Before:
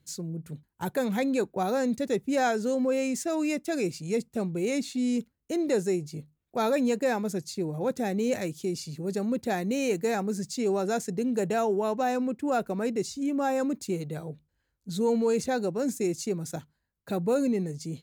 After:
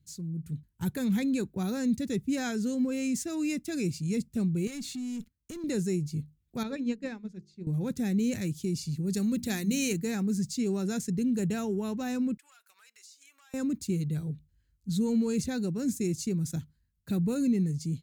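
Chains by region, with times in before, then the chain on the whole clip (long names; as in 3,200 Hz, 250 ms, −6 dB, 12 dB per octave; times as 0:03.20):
0:04.67–0:05.64: low-shelf EQ 370 Hz −6.5 dB + downward compressor 2.5 to 1, threshold −42 dBFS + leveller curve on the samples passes 2
0:06.63–0:07.67: low-pass filter 4,200 Hz + mains-hum notches 50/100/150/200/250/300/350/400/450 Hz + expander for the loud parts 2.5 to 1, over −34 dBFS
0:09.13–0:09.93: high-shelf EQ 2,300 Hz +8.5 dB + mains-hum notches 60/120/180/240/300 Hz
0:12.37–0:13.54: high-pass filter 1,100 Hz 24 dB per octave + downward compressor 4 to 1, threshold −51 dBFS + saturating transformer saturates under 1,700 Hz
whole clip: low-shelf EQ 390 Hz +9 dB; automatic gain control gain up to 6 dB; guitar amp tone stack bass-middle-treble 6-0-2; level +8 dB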